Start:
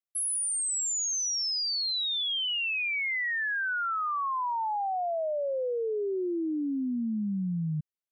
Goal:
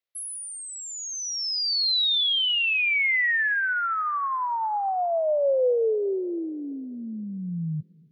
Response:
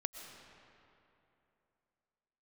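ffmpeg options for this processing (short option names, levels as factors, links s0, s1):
-filter_complex "[0:a]equalizer=f=125:t=o:w=1:g=5,equalizer=f=250:t=o:w=1:g=-8,equalizer=f=500:t=o:w=1:g=10,equalizer=f=2000:t=o:w=1:g=6,equalizer=f=4000:t=o:w=1:g=8,equalizer=f=8000:t=o:w=1:g=-9,asplit=2[s0][s1];[1:a]atrim=start_sample=2205,adelay=18[s2];[s1][s2]afir=irnorm=-1:irlink=0,volume=0.133[s3];[s0][s3]amix=inputs=2:normalize=0"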